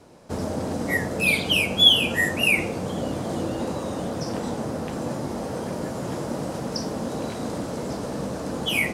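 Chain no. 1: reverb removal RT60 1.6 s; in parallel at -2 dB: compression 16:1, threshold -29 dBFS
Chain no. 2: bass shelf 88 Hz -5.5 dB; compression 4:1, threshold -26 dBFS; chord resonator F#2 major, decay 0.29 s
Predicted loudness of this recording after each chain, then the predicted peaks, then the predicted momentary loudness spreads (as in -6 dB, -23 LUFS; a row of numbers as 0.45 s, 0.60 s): -23.0 LUFS, -41.5 LUFS; -3.5 dBFS, -26.5 dBFS; 11 LU, 6 LU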